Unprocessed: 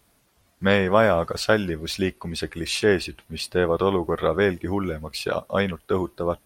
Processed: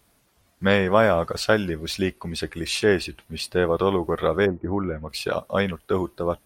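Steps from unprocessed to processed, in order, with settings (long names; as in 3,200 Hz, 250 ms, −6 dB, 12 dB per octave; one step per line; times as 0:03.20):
0:04.45–0:05.08: low-pass filter 1,000 Hz → 2,600 Hz 24 dB per octave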